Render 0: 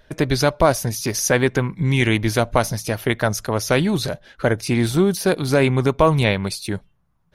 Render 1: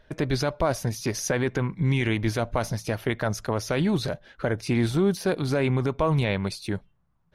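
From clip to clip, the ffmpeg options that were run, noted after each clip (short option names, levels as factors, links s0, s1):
-af "lowpass=f=3800:p=1,alimiter=limit=0.335:level=0:latency=1:release=26,volume=0.668"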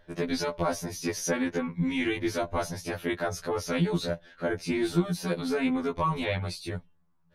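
-af "afftfilt=real='re*2*eq(mod(b,4),0)':imag='im*2*eq(mod(b,4),0)':win_size=2048:overlap=0.75"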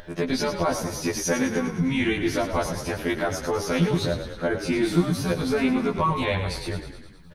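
-filter_complex "[0:a]acompressor=mode=upward:threshold=0.0126:ratio=2.5,asplit=2[s0][s1];[s1]asplit=8[s2][s3][s4][s5][s6][s7][s8][s9];[s2]adelay=104,afreqshift=-34,volume=0.355[s10];[s3]adelay=208,afreqshift=-68,volume=0.219[s11];[s4]adelay=312,afreqshift=-102,volume=0.136[s12];[s5]adelay=416,afreqshift=-136,volume=0.0841[s13];[s6]adelay=520,afreqshift=-170,volume=0.0525[s14];[s7]adelay=624,afreqshift=-204,volume=0.0324[s15];[s8]adelay=728,afreqshift=-238,volume=0.0202[s16];[s9]adelay=832,afreqshift=-272,volume=0.0124[s17];[s10][s11][s12][s13][s14][s15][s16][s17]amix=inputs=8:normalize=0[s18];[s0][s18]amix=inputs=2:normalize=0,volume=1.58"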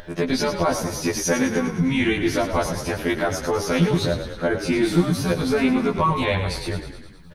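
-af "asoftclip=type=hard:threshold=0.266,volume=1.41"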